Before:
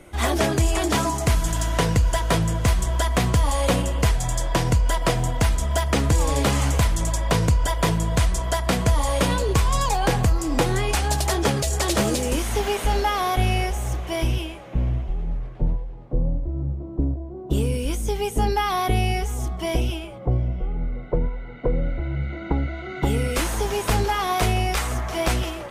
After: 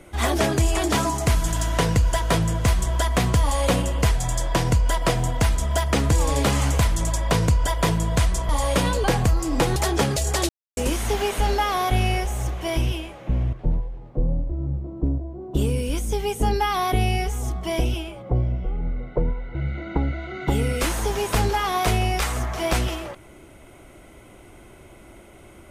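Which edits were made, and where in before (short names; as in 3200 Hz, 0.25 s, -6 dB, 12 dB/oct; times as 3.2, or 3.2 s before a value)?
8.49–8.94 cut
9.49–10.03 cut
10.75–11.22 cut
11.95–12.23 mute
14.99–15.49 cut
21.51–22.1 cut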